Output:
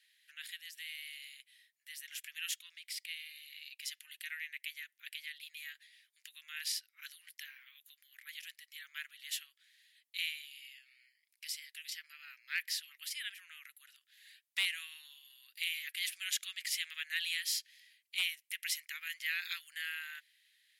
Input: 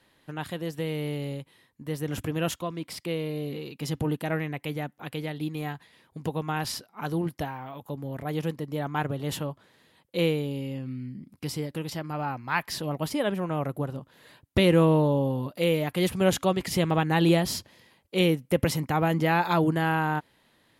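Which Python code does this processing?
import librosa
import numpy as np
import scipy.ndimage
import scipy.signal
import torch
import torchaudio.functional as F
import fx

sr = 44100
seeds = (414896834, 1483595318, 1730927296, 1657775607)

y = scipy.signal.sosfilt(scipy.signal.butter(8, 1800.0, 'highpass', fs=sr, output='sos'), x)
y = np.clip(10.0 ** (20.0 / 20.0) * y, -1.0, 1.0) / 10.0 ** (20.0 / 20.0)
y = F.gain(torch.from_numpy(y), -2.5).numpy()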